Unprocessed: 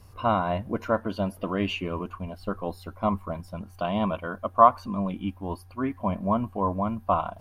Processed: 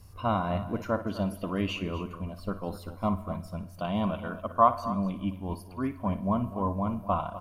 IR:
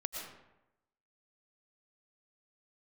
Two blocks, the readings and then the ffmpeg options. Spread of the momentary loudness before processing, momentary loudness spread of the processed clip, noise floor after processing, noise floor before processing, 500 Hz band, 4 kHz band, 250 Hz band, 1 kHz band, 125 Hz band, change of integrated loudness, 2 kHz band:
13 LU, 11 LU, −47 dBFS, −50 dBFS, −4.0 dB, −3.0 dB, −1.5 dB, −4.5 dB, 0.0 dB, −3.0 dB, −4.0 dB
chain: -filter_complex "[0:a]bass=frequency=250:gain=5,treble=frequency=4000:gain=6,aecho=1:1:57|250:0.211|0.2,asplit=2[link_01][link_02];[1:a]atrim=start_sample=2205[link_03];[link_02][link_03]afir=irnorm=-1:irlink=0,volume=-15.5dB[link_04];[link_01][link_04]amix=inputs=2:normalize=0,volume=-6dB"

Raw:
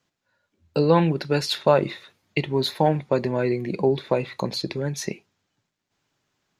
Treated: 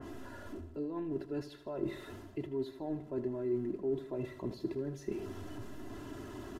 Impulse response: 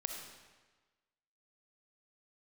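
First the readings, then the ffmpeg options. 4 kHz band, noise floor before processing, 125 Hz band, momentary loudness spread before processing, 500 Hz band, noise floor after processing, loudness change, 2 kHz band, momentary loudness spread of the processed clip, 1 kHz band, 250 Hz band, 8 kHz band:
−26.0 dB, −81 dBFS, −18.0 dB, 11 LU, −15.0 dB, −52 dBFS, −16.0 dB, −19.5 dB, 12 LU, −23.0 dB, −11.0 dB, below −20 dB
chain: -filter_complex "[0:a]aeval=exprs='val(0)+0.5*0.0266*sgn(val(0))':channel_layout=same,areverse,acompressor=threshold=-31dB:ratio=6,areverse,bandreject=frequency=2300:width=8.3,aecho=1:1:3:0.78,aresample=32000,aresample=44100,firequalizer=gain_entry='entry(400,0);entry(610,-7);entry(4000,-27)':delay=0.05:min_phase=1,asplit=2[link_01][link_02];[link_02]aecho=0:1:78|156|234|312|390:0.224|0.116|0.0605|0.0315|0.0164[link_03];[link_01][link_03]amix=inputs=2:normalize=0,adynamicequalizer=threshold=0.00126:dfrequency=2700:dqfactor=0.7:tfrequency=2700:tqfactor=0.7:attack=5:release=100:ratio=0.375:range=3.5:mode=boostabove:tftype=highshelf,volume=-3.5dB"

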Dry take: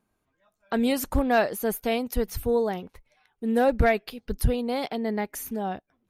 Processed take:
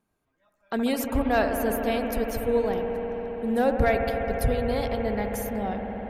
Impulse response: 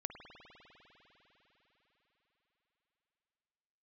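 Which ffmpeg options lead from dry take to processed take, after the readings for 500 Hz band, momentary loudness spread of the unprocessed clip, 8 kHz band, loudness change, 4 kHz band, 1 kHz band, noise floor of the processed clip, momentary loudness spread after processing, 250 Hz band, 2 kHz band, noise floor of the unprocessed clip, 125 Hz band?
+1.0 dB, 9 LU, −2.0 dB, 0.0 dB, −2.0 dB, +0.5 dB, −76 dBFS, 7 LU, 0.0 dB, 0.0 dB, −77 dBFS, +0.5 dB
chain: -filter_complex "[1:a]atrim=start_sample=2205,asetrate=32634,aresample=44100[link_01];[0:a][link_01]afir=irnorm=-1:irlink=0"

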